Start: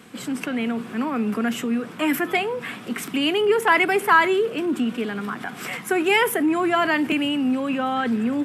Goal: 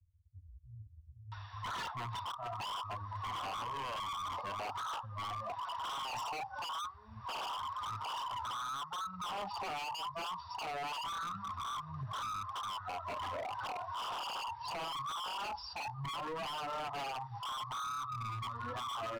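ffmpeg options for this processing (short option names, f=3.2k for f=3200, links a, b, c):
-filter_complex "[0:a]flanger=delay=3.3:depth=8.6:regen=-39:speed=1.2:shape=sinusoidal,firequalizer=gain_entry='entry(170,0);entry(420,-26);entry(2300,6)':delay=0.05:min_phase=1,acrossover=split=180[a][b];[b]adelay=580[c];[a][c]amix=inputs=2:normalize=0,acrossover=split=370|2800[d][e][f];[d]acompressor=threshold=-57dB:ratio=4[g];[e]acompressor=threshold=-42dB:ratio=4[h];[f]acompressor=threshold=-57dB:ratio=4[i];[g][h][i]amix=inputs=3:normalize=0,asetrate=19404,aresample=44100,afftdn=nr=20:nf=-41,alimiter=level_in=19.5dB:limit=-24dB:level=0:latency=1:release=351,volume=-19.5dB,asplit=2[j][k];[k]highpass=f=720:p=1,volume=26dB,asoftclip=type=tanh:threshold=-27.5dB[l];[j][l]amix=inputs=2:normalize=0,lowpass=f=4.4k:p=1,volume=-6dB,aecho=1:1:1.1:0.44,areverse,acompressor=mode=upward:threshold=-52dB:ratio=2.5,areverse,equalizer=f=280:w=5.6:g=12.5,aeval=exprs='0.015*(abs(mod(val(0)/0.015+3,4)-2)-1)':c=same,volume=1.5dB"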